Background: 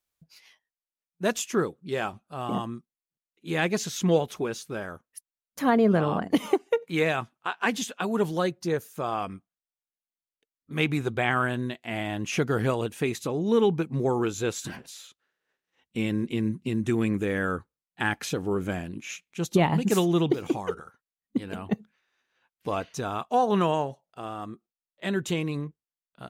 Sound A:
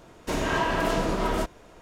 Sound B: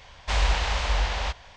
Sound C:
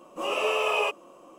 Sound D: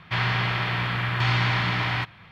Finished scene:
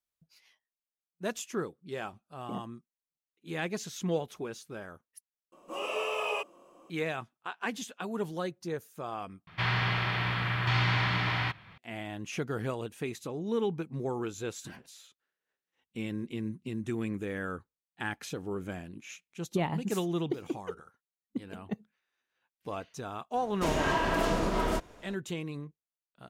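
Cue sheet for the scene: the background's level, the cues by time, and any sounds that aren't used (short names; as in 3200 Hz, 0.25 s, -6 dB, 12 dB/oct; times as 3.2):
background -8.5 dB
5.52 replace with C -7 dB
9.47 replace with D -4.5 dB
23.34 add A -3 dB
not used: B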